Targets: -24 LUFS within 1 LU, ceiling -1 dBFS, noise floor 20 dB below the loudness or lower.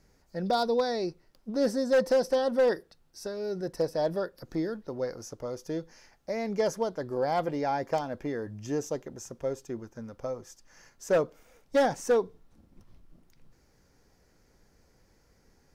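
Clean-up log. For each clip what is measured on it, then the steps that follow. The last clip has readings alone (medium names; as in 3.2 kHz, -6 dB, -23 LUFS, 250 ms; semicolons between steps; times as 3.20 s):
clipped samples 0.6%; clipping level -18.5 dBFS; loudness -30.5 LUFS; peak level -18.5 dBFS; loudness target -24.0 LUFS
-> clip repair -18.5 dBFS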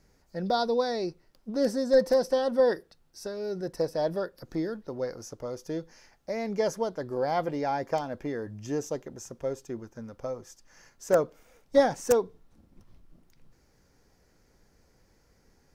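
clipped samples 0.0%; loudness -29.5 LUFS; peak level -9.5 dBFS; loudness target -24.0 LUFS
-> trim +5.5 dB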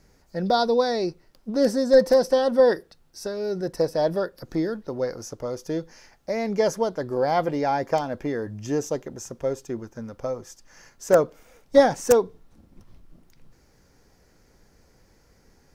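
loudness -24.0 LUFS; peak level -4.0 dBFS; noise floor -60 dBFS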